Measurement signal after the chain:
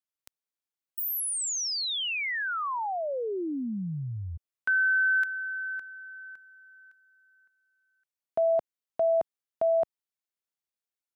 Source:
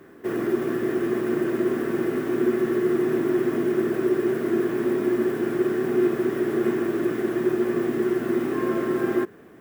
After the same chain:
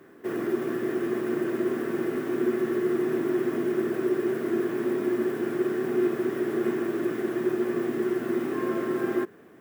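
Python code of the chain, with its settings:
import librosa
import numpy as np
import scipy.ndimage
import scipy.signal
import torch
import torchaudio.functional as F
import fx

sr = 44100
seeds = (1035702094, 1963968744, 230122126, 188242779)

y = fx.highpass(x, sr, hz=120.0, slope=6)
y = F.gain(torch.from_numpy(y), -3.0).numpy()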